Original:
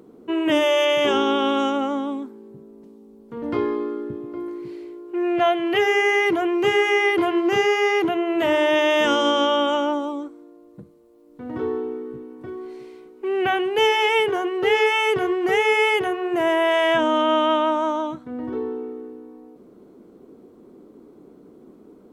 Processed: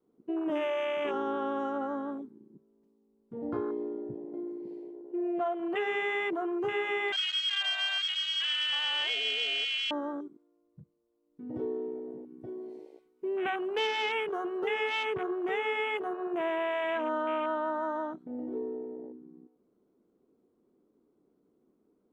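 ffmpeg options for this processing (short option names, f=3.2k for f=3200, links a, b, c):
-filter_complex "[0:a]asettb=1/sr,asplit=3[a][b][c];[a]atrim=end=7.124[d];[b]atrim=start=7.12:end=9.91,asetpts=PTS-STARTPTS,afade=t=in:d=0.004:c=qsin,afade=t=out:st=2.786:d=0.004:c=qsin,lowpass=f=3.1k:t=q:w=0.5098,lowpass=f=3.1k:t=q:w=0.6013,lowpass=f=3.1k:t=q:w=0.9,lowpass=f=3.1k:t=q:w=2.563,afreqshift=-3600[e];[c]atrim=start=9.906[f];[d][e]acrossfade=d=0.004:c1=hsin:c2=qsin[g];[g][f]acrossfade=d=0.004:c1=qsin:c2=hsin,asettb=1/sr,asplit=3[h][i][j];[h]atrim=end=11.544[k];[i]atrim=start=11.54:end=15.03,asetpts=PTS-STARTPTS,afade=t=in:d=0.004:c=qsin,afade=t=out:st=3.486:d=0.004:c=qsin,highshelf=f=2.8k:g=7[l];[j]atrim=start=15.026[m];[k][l]acrossfade=d=0.004:c1=hsin:c2=qsin[n];[n][m]acrossfade=d=0.004:c1=qsin:c2=hsin,adynamicequalizer=threshold=0.0224:dfrequency=230:dqfactor=1.1:tfrequency=230:tqfactor=1.1:attack=5:release=100:ratio=0.375:range=2:mode=cutabove:tftype=bell,acompressor=threshold=-23dB:ratio=2.5,afwtdn=0.0398,volume=-6.5dB"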